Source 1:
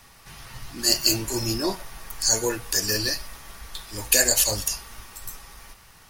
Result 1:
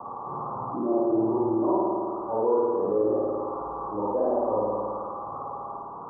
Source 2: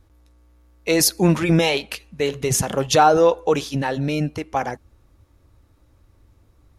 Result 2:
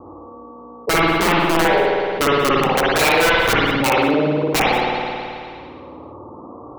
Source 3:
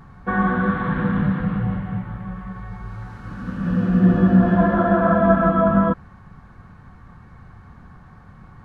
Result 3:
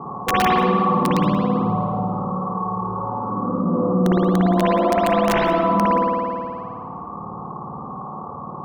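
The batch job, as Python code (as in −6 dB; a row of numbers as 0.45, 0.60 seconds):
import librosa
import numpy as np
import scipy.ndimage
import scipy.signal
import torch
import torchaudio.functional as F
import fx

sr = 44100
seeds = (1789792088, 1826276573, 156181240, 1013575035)

y = scipy.signal.sosfilt(scipy.signal.butter(16, 1200.0, 'lowpass', fs=sr, output='sos'), x)
y = fx.notch(y, sr, hz=650.0, q=13.0)
y = fx.dereverb_blind(y, sr, rt60_s=1.1)
y = scipy.signal.sosfilt(scipy.signal.butter(2, 340.0, 'highpass', fs=sr, output='sos'), y)
y = fx.rider(y, sr, range_db=4, speed_s=0.5)
y = (np.mod(10.0 ** (16.5 / 20.0) * y + 1.0, 2.0) - 1.0) / 10.0 ** (16.5 / 20.0)
y = y + 10.0 ** (-21.0 / 20.0) * np.pad(y, (int(182 * sr / 1000.0), 0))[:len(y)]
y = fx.rev_spring(y, sr, rt60_s=1.3, pass_ms=(54,), chirp_ms=80, drr_db=-7.0)
y = fx.env_flatten(y, sr, amount_pct=50)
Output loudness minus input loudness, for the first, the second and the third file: −5.0, +3.0, −1.0 LU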